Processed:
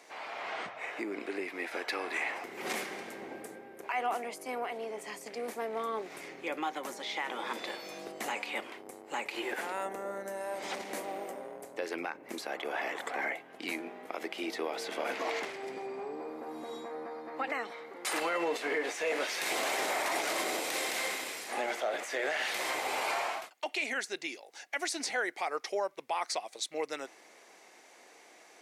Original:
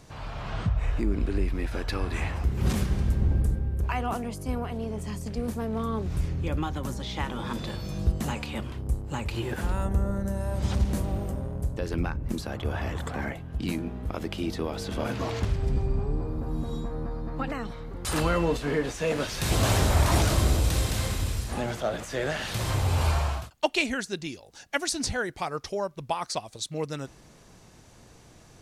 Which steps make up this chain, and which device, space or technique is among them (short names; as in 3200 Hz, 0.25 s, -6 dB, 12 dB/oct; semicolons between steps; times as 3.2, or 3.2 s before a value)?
laptop speaker (HPF 340 Hz 24 dB/oct; bell 760 Hz +5 dB 0.41 oct; bell 2100 Hz +10.5 dB 0.49 oct; limiter -20.5 dBFS, peak gain reduction 13 dB); gain -2.5 dB